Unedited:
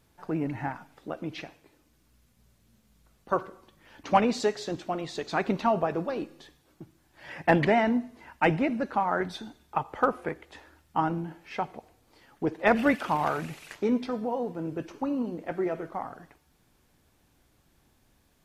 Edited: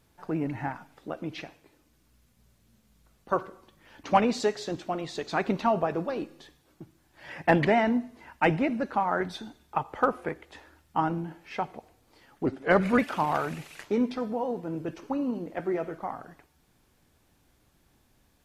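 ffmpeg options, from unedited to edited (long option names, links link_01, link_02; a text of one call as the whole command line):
ffmpeg -i in.wav -filter_complex "[0:a]asplit=3[link_01][link_02][link_03];[link_01]atrim=end=12.464[link_04];[link_02]atrim=start=12.46:end=12.9,asetpts=PTS-STARTPTS,asetrate=37044,aresample=44100[link_05];[link_03]atrim=start=12.896[link_06];[link_04][link_05]acrossfade=duration=0.004:curve1=hsin:curve2=hsin[link_07];[link_07][link_06]acrossfade=duration=0.004:curve1=hsin:curve2=hsin" out.wav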